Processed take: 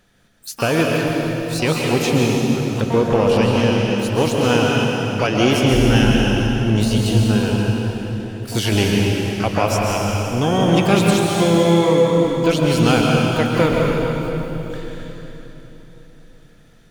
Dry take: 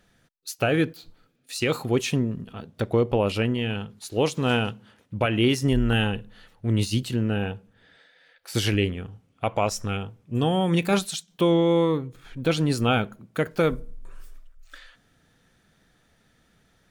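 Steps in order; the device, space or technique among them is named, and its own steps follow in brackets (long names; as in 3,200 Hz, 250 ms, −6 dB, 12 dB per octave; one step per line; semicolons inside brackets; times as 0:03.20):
shimmer-style reverb (pitch-shifted copies added +12 semitones −11 dB; convolution reverb RT60 3.7 s, pre-delay 120 ms, DRR −2 dB)
level +3.5 dB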